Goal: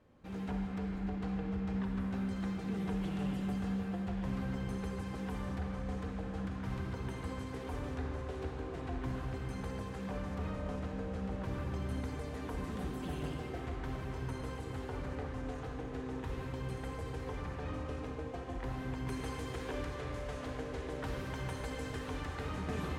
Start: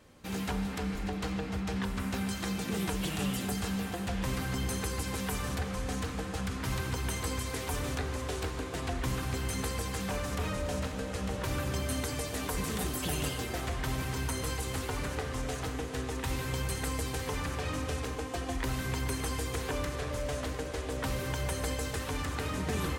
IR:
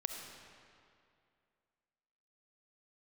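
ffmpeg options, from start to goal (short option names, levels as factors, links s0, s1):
-filter_complex "[0:a]asetnsamples=n=441:p=0,asendcmd='19.07 lowpass f 2500',lowpass=f=1100:p=1[s0];[1:a]atrim=start_sample=2205,asetrate=57330,aresample=44100[s1];[s0][s1]afir=irnorm=-1:irlink=0,volume=0.75"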